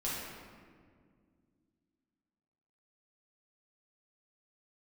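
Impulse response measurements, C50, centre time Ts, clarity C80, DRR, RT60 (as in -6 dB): -2.0 dB, 0.112 s, 0.5 dB, -8.0 dB, 2.0 s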